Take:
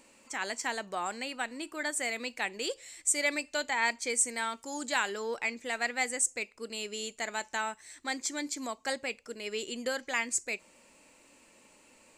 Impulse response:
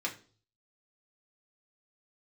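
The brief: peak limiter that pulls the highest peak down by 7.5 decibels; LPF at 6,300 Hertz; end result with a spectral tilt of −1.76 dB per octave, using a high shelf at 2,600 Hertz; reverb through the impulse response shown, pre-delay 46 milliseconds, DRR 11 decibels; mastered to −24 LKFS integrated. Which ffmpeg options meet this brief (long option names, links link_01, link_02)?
-filter_complex "[0:a]lowpass=6300,highshelf=frequency=2600:gain=-7,alimiter=level_in=0.5dB:limit=-24dB:level=0:latency=1,volume=-0.5dB,asplit=2[link_01][link_02];[1:a]atrim=start_sample=2205,adelay=46[link_03];[link_02][link_03]afir=irnorm=-1:irlink=0,volume=-15.5dB[link_04];[link_01][link_04]amix=inputs=2:normalize=0,volume=13.5dB"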